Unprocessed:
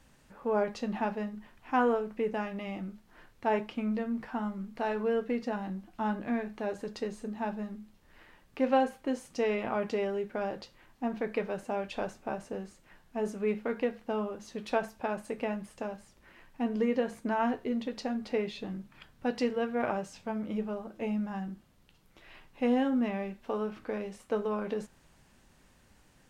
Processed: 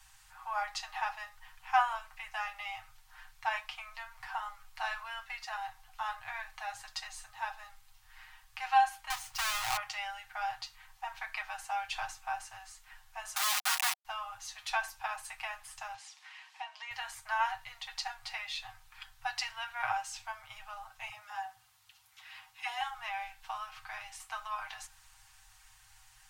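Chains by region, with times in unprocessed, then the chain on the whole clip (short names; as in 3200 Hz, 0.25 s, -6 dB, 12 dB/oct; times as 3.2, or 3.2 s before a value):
9.1–9.77 half-waves squared off + high shelf 6000 Hz -7.5 dB + compressor 3:1, threshold -28 dBFS
13.36–14.05 companded quantiser 2-bit + brick-wall FIR high-pass 270 Hz
15.94–16.91 BPF 530–5200 Hz + bell 1500 Hz -7 dB 0.73 oct + mismatched tape noise reduction encoder only
21.09–22.81 HPF 120 Hz + dispersion lows, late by 78 ms, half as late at 730 Hz
whole clip: Chebyshev band-stop 110–750 Hz, order 5; high shelf 2500 Hz +8 dB; comb 6.4 ms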